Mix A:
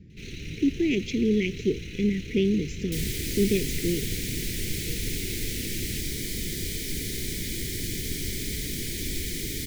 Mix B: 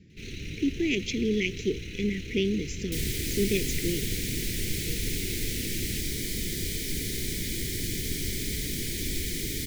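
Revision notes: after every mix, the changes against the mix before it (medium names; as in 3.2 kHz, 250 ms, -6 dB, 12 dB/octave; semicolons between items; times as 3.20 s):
speech: add tilt EQ +2 dB/octave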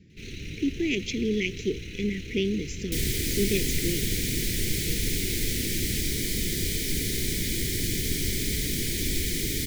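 second sound +3.5 dB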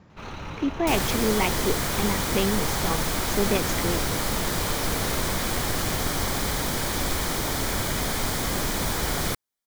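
first sound: add treble shelf 4.1 kHz -6.5 dB; second sound: entry -2.05 s; master: remove Chebyshev band-stop 400–2100 Hz, order 3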